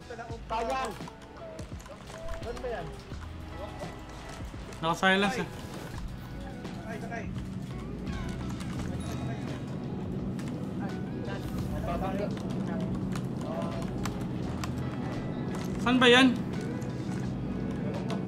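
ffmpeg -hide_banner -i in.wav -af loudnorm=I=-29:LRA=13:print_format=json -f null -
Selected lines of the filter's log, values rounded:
"input_i" : "-30.3",
"input_tp" : "-8.8",
"input_lra" : "10.3",
"input_thresh" : "-41.0",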